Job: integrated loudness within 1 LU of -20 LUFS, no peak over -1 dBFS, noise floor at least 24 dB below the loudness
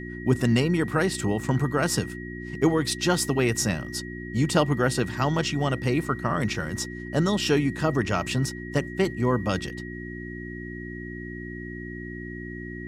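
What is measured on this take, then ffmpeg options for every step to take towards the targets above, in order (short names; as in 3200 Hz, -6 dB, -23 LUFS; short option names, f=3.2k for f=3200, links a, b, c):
hum 60 Hz; harmonics up to 360 Hz; hum level -34 dBFS; steady tone 1900 Hz; tone level -40 dBFS; loudness -25.5 LUFS; peak -8.5 dBFS; loudness target -20.0 LUFS
-> -af "bandreject=f=60:t=h:w=4,bandreject=f=120:t=h:w=4,bandreject=f=180:t=h:w=4,bandreject=f=240:t=h:w=4,bandreject=f=300:t=h:w=4,bandreject=f=360:t=h:w=4"
-af "bandreject=f=1.9k:w=30"
-af "volume=5.5dB"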